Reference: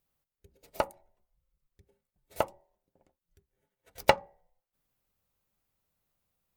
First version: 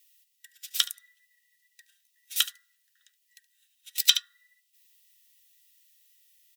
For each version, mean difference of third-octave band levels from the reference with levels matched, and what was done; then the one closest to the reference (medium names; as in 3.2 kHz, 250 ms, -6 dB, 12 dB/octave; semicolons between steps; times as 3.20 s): 19.5 dB: every band turned upside down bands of 2 kHz; elliptic high-pass 2.6 kHz, stop band 80 dB; on a send: delay 72 ms -18 dB; on the sum: loudness maximiser +21 dB; trim -1 dB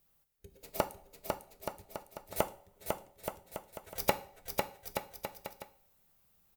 9.0 dB: treble shelf 11 kHz +6.5 dB; compression 5:1, threshold -32 dBFS, peak gain reduction 16 dB; on a send: bouncing-ball echo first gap 500 ms, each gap 0.75×, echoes 5; on the sum: two-slope reverb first 0.4 s, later 2 s, from -27 dB, DRR 10 dB; trim +5 dB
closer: second